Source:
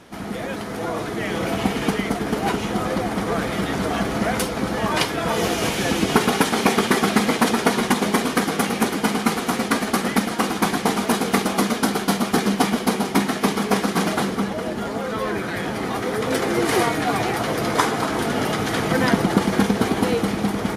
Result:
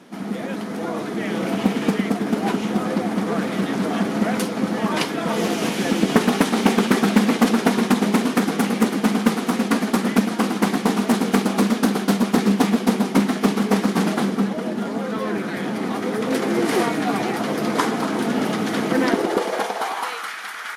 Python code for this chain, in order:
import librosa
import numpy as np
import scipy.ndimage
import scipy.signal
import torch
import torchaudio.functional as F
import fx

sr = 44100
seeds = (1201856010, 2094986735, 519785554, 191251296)

y = fx.filter_sweep_highpass(x, sr, from_hz=210.0, to_hz=1500.0, start_s=18.79, end_s=20.34, q=2.3)
y = fx.doppler_dist(y, sr, depth_ms=0.36)
y = y * librosa.db_to_amplitude(-2.5)